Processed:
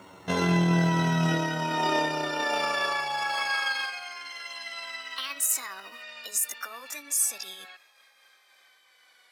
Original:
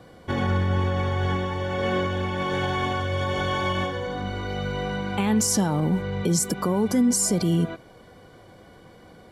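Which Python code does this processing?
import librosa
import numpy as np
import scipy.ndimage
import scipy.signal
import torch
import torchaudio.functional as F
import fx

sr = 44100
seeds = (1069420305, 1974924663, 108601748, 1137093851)

y = fx.pitch_glide(x, sr, semitones=11.0, runs='ending unshifted')
y = fx.filter_sweep_highpass(y, sr, from_hz=74.0, to_hz=2000.0, start_s=0.46, end_s=4.17, q=1.0)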